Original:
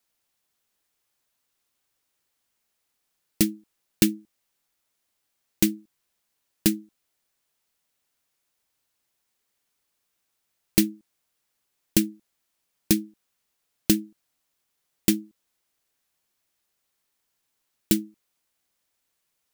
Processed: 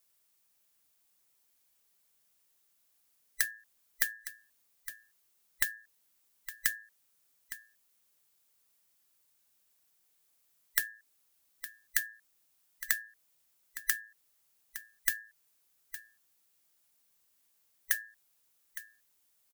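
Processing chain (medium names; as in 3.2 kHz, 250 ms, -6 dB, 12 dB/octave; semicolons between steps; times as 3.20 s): every band turned upside down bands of 2 kHz; treble shelf 7.1 kHz +10 dB; compression 12:1, threshold -24 dBFS, peak gain reduction 16 dB; on a send: delay 862 ms -13.5 dB; on the sum: trim -2.5 dB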